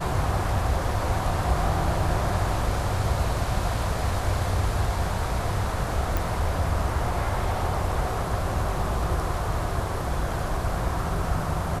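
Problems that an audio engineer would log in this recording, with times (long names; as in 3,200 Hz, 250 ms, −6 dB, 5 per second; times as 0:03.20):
0:06.17: click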